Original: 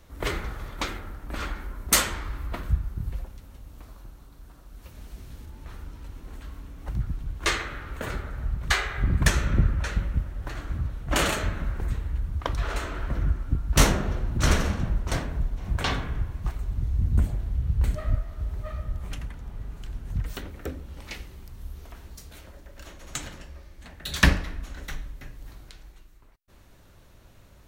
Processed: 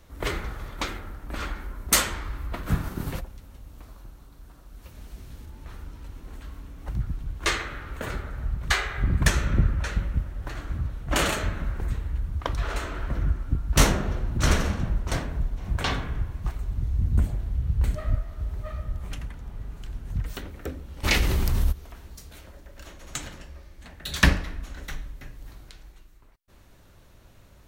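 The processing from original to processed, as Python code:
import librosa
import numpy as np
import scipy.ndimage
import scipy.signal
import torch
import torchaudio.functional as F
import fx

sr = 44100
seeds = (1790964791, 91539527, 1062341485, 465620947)

y = fx.spec_clip(x, sr, under_db=21, at=(2.66, 3.19), fade=0.02)
y = fx.env_flatten(y, sr, amount_pct=70, at=(21.03, 21.71), fade=0.02)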